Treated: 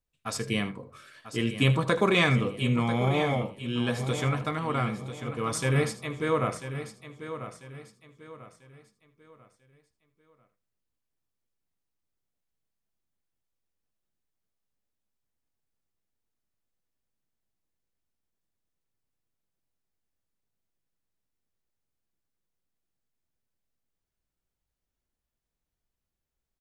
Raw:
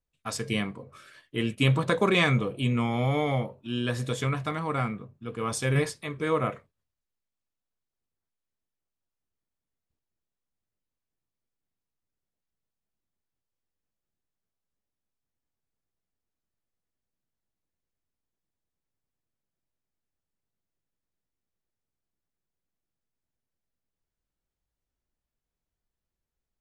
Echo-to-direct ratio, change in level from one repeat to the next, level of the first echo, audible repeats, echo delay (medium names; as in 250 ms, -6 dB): -9.0 dB, no regular repeats, -14.5 dB, 6, 78 ms